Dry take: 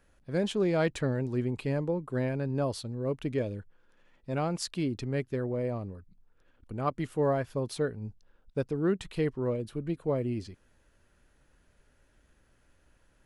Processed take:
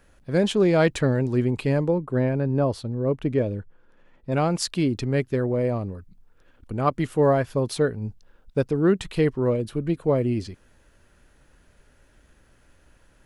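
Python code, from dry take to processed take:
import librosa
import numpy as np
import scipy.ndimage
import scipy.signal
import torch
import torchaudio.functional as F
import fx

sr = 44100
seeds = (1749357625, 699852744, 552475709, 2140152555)

y = fx.high_shelf(x, sr, hz=2300.0, db=-10.5, at=(1.98, 4.32))
y = F.gain(torch.from_numpy(y), 8.0).numpy()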